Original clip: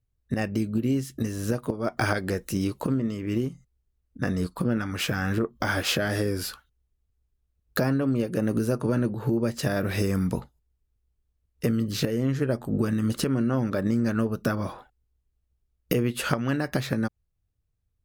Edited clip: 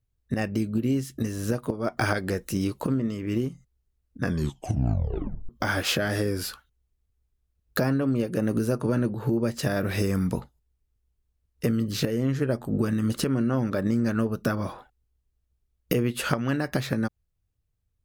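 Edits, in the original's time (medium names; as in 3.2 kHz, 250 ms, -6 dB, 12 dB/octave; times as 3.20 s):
4.22 s: tape stop 1.27 s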